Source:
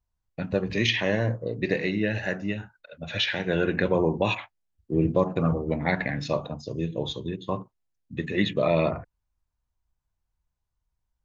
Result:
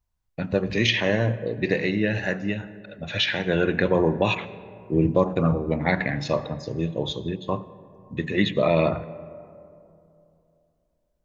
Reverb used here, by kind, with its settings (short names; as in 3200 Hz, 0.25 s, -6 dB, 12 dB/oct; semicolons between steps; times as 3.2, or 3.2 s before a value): digital reverb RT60 2.8 s, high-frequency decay 0.35×, pre-delay 50 ms, DRR 16.5 dB; gain +2.5 dB